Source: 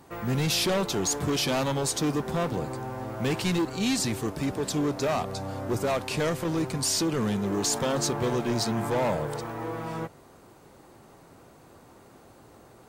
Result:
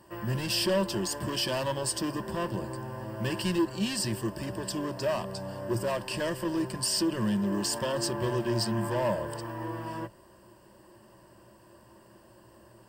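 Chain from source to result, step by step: ripple EQ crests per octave 1.3, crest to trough 13 dB; gain -5 dB

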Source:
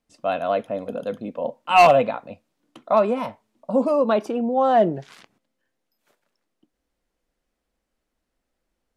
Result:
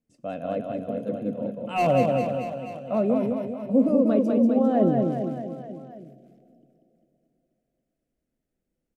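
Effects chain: graphic EQ 125/250/500/1000/4000 Hz +12/+6/+4/-10/-7 dB; reverse bouncing-ball echo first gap 0.19 s, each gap 1.1×, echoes 5; dynamic EQ 290 Hz, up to +4 dB, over -22 dBFS, Q 0.83; on a send at -14.5 dB: brick-wall FIR band-stop 770–2300 Hz + reverb RT60 3.2 s, pre-delay 58 ms; on the sum: gain -9 dB

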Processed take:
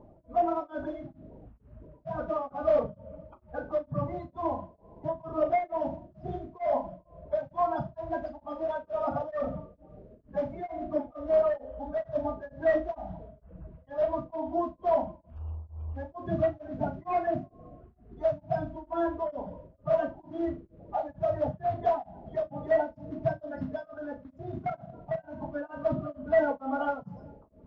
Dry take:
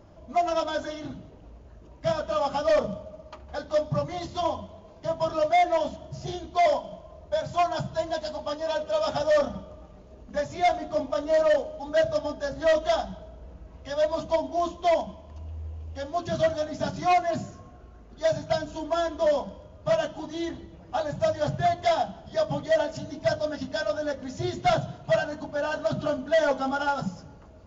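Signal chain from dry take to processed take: bin magnitudes rounded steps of 30 dB; LPF 1100 Hz 12 dB/oct; 23.87–25.33 level quantiser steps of 12 dB; flutter echo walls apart 6.6 m, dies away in 0.26 s; beating tremolo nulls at 2.2 Hz

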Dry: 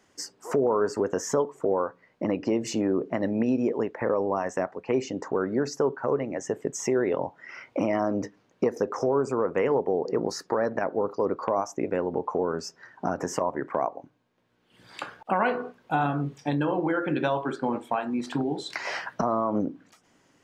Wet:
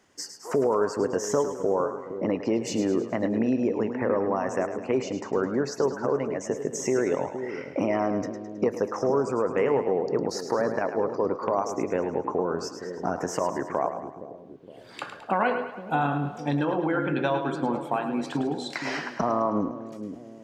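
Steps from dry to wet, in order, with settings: split-band echo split 520 Hz, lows 0.466 s, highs 0.106 s, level -9 dB

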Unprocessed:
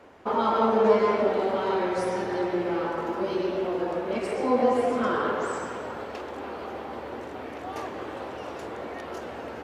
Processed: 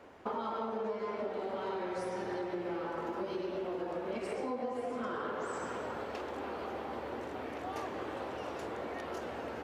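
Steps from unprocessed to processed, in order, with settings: compressor 10:1, threshold -30 dBFS, peak gain reduction 16 dB; gain -3.5 dB

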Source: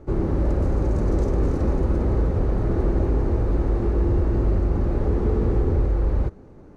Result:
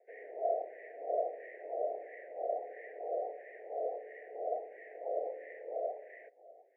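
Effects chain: wah 1.5 Hz 580–1800 Hz, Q 5.7; Chebyshev band-stop 640–1800 Hz, order 4; mistuned SSB +90 Hz 350–2200 Hz; gain +6.5 dB

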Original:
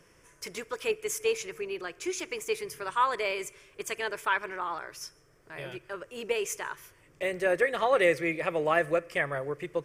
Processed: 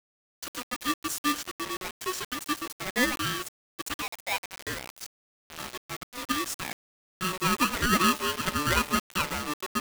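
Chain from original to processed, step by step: 4.02–4.67 steep high-pass 1400 Hz 48 dB/oct; requantised 6-bit, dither none; polarity switched at an audio rate 740 Hz

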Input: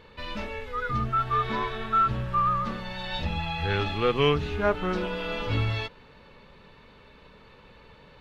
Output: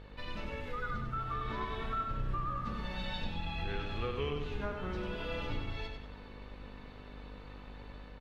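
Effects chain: octaver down 2 oct, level +3 dB; compressor 4:1, threshold -33 dBFS, peak gain reduction 14.5 dB; flange 0.5 Hz, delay 1.5 ms, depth 3.8 ms, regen +70%; buzz 50 Hz, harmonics 40, -51 dBFS -6 dB/oct; AGC gain up to 3 dB; on a send: feedback echo 96 ms, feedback 40%, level -5.5 dB; on the sum: gain -2 dB

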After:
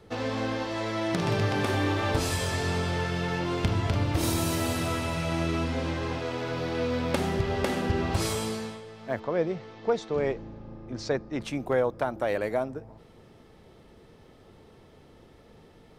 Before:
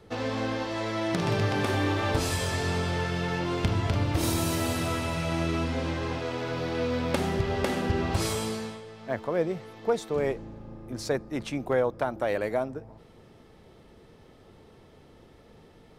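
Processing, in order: 9.2–11.41 LPF 6200 Hz 24 dB/oct

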